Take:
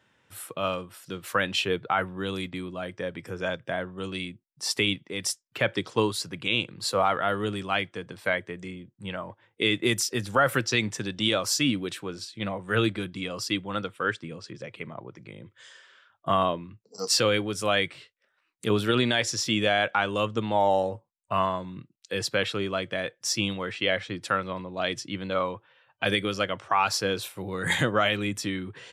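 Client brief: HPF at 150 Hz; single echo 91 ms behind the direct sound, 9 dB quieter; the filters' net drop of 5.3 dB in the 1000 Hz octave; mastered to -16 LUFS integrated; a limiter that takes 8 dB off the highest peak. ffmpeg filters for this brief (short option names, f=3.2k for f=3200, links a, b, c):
-af "highpass=150,equalizer=f=1k:t=o:g=-7.5,alimiter=limit=-20dB:level=0:latency=1,aecho=1:1:91:0.355,volume=16dB"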